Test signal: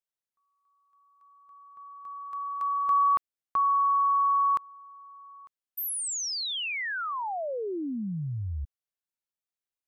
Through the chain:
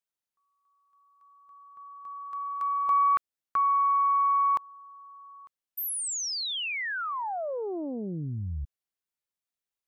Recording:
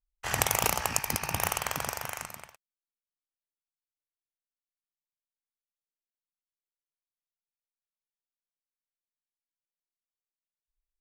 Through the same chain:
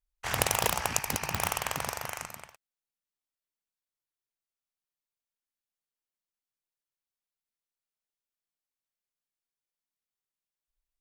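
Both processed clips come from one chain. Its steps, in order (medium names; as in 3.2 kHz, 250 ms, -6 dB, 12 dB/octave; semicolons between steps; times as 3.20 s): loudspeaker Doppler distortion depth 0.78 ms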